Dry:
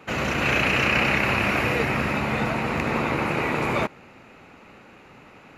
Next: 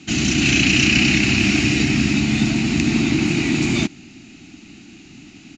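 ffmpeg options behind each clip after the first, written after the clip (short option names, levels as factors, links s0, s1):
-af "firequalizer=gain_entry='entry(110,0);entry(310,7);entry(500,-26);entry(700,-11);entry(1000,-20);entry(1500,-12);entry(2900,3);entry(4500,8);entry(6900,12);entry(12000,-27)':delay=0.05:min_phase=1,volume=2.11"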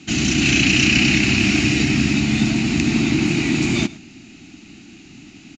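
-af "aecho=1:1:106:0.106"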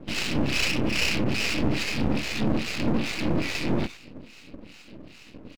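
-filter_complex "[0:a]aresample=11025,asoftclip=type=tanh:threshold=0.119,aresample=44100,acrossover=split=1100[s0][s1];[s0]aeval=exprs='val(0)*(1-1/2+1/2*cos(2*PI*2.4*n/s))':c=same[s2];[s1]aeval=exprs='val(0)*(1-1/2-1/2*cos(2*PI*2.4*n/s))':c=same[s3];[s2][s3]amix=inputs=2:normalize=0,aeval=exprs='max(val(0),0)':c=same,volume=1.78"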